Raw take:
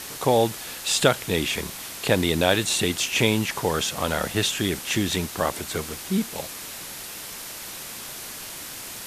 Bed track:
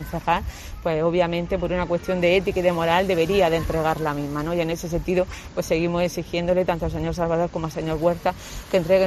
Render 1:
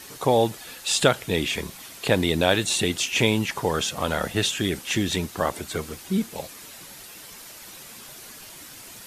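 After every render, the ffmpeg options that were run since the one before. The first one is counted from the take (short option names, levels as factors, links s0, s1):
-af "afftdn=nr=8:nf=-37"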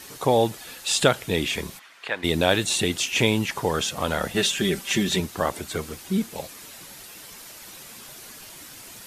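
-filter_complex "[0:a]asplit=3[s0][s1][s2];[s0]afade=t=out:st=1.78:d=0.02[s3];[s1]bandpass=f=1600:t=q:w=1.3,afade=t=in:st=1.78:d=0.02,afade=t=out:st=2.23:d=0.02[s4];[s2]afade=t=in:st=2.23:d=0.02[s5];[s3][s4][s5]amix=inputs=3:normalize=0,asettb=1/sr,asplit=3[s6][s7][s8];[s6]atrim=end=4.344[s9];[s7]atrim=start=4.34:end=5.2,asetpts=PTS-STARTPTS,afade=t=in:d=0.004:c=qsin,afade=t=out:st=0.856:d=0.004:c=qsin,aecho=1:1:5.1:0.7,atrim=end_sample=37926[s10];[s8]atrim=start=5.196[s11];[s9][s10]acrossfade=d=0.004:c1=hsin:c2=qsin[s12];[s12][s11]acrossfade=d=0.004:c1=qsin:c2=hsin"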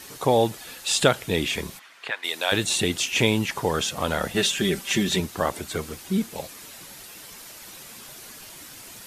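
-filter_complex "[0:a]asplit=3[s0][s1][s2];[s0]afade=t=out:st=2.1:d=0.02[s3];[s1]highpass=890,afade=t=in:st=2.1:d=0.02,afade=t=out:st=2.51:d=0.02[s4];[s2]afade=t=in:st=2.51:d=0.02[s5];[s3][s4][s5]amix=inputs=3:normalize=0"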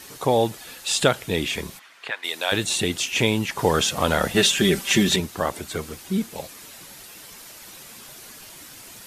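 -filter_complex "[0:a]asplit=3[s0][s1][s2];[s0]atrim=end=3.592[s3];[s1]atrim=start=3.588:end=5.162,asetpts=PTS-STARTPTS,volume=1.68[s4];[s2]atrim=start=5.158[s5];[s3][s4]acrossfade=d=0.004:c1=hsin:c2=hsin[s6];[s6][s5]acrossfade=d=0.004:c1=hsin:c2=hsin"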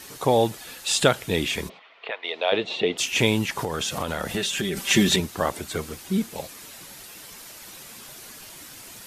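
-filter_complex "[0:a]asplit=3[s0][s1][s2];[s0]afade=t=out:st=1.68:d=0.02[s3];[s1]highpass=240,equalizer=f=300:t=q:w=4:g=-4,equalizer=f=450:t=q:w=4:g=7,equalizer=f=650:t=q:w=4:g=6,equalizer=f=1600:t=q:w=4:g=-9,lowpass=f=3500:w=0.5412,lowpass=f=3500:w=1.3066,afade=t=in:st=1.68:d=0.02,afade=t=out:st=2.97:d=0.02[s4];[s2]afade=t=in:st=2.97:d=0.02[s5];[s3][s4][s5]amix=inputs=3:normalize=0,asettb=1/sr,asplit=3[s6][s7][s8];[s6]atrim=end=3.514[s9];[s7]atrim=start=3.51:end=4.77,asetpts=PTS-STARTPTS,afade=t=in:d=0.004:c=qsin,afade=t=out:st=1.256:d=0.004:c=qsin,acompressor=threshold=0.0708:ratio=6:attack=3.2:release=140:knee=1:detection=peak[s10];[s8]atrim=start=4.766[s11];[s9][s10]acrossfade=d=0.004:c1=hsin:c2=qsin[s12];[s12][s11]acrossfade=d=0.004:c1=qsin:c2=hsin"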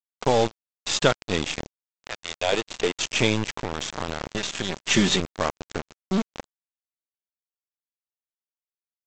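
-af "aeval=exprs='if(lt(val(0),0),0.708*val(0),val(0))':c=same,aresample=16000,acrusher=bits=3:mix=0:aa=0.5,aresample=44100"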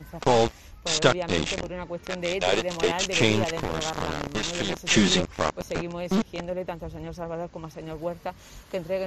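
-filter_complex "[1:a]volume=0.282[s0];[0:a][s0]amix=inputs=2:normalize=0"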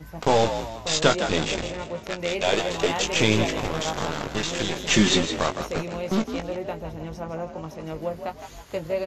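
-filter_complex "[0:a]asplit=2[s0][s1];[s1]adelay=19,volume=0.398[s2];[s0][s2]amix=inputs=2:normalize=0,asplit=5[s3][s4][s5][s6][s7];[s4]adelay=161,afreqshift=53,volume=0.355[s8];[s5]adelay=322,afreqshift=106,volume=0.141[s9];[s6]adelay=483,afreqshift=159,volume=0.0569[s10];[s7]adelay=644,afreqshift=212,volume=0.0226[s11];[s3][s8][s9][s10][s11]amix=inputs=5:normalize=0"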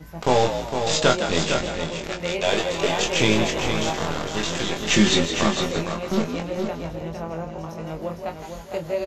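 -filter_complex "[0:a]asplit=2[s0][s1];[s1]adelay=24,volume=0.473[s2];[s0][s2]amix=inputs=2:normalize=0,aecho=1:1:458:0.447"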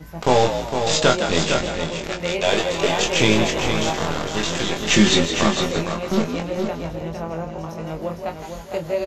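-af "volume=1.33,alimiter=limit=0.891:level=0:latency=1"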